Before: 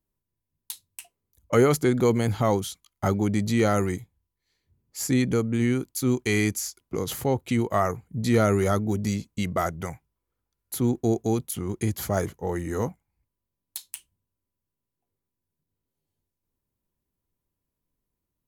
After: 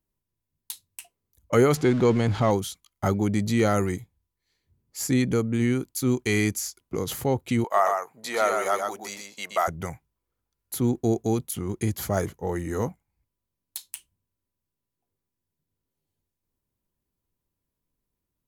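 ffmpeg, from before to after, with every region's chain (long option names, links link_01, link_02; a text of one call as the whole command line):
ffmpeg -i in.wav -filter_complex "[0:a]asettb=1/sr,asplit=3[link_01][link_02][link_03];[link_01]atrim=end=1.754[link_04];[link_02]atrim=start=1.75:end=2.51,asetpts=PTS-STARTPTS,afade=type=in:duration=0.004:curve=qsin,afade=type=out:start_time=0.756:duration=0.004:curve=qsin,aeval=exprs='val(0)+0.5*0.0251*sgn(val(0))':channel_layout=same,lowpass=5400[link_05];[link_03]atrim=start=2.506[link_06];[link_04][link_05]acrossfade=duration=0.004:curve1=hsin:curve2=qsin[link_07];[link_07][link_06]acrossfade=duration=0.004:curve1=qsin:curve2=hsin,asettb=1/sr,asplit=3[link_08][link_09][link_10];[link_08]atrim=end=7.644[link_11];[link_09]atrim=start=7.64:end=9.68,asetpts=PTS-STARTPTS,afade=type=in:duration=0.004:curve=qsin,afade=type=out:start_time=2.036:duration=0.004:curve=qsin,highpass=frequency=770:width_type=q:width=1.6,aecho=1:1:124:0.596,atrim=end_sample=89964[link_12];[link_10]atrim=start=9.676[link_13];[link_11][link_12]acrossfade=duration=0.004:curve1=hsin:curve2=qsin[link_14];[link_14][link_13]acrossfade=duration=0.004:curve1=qsin:curve2=hsin" out.wav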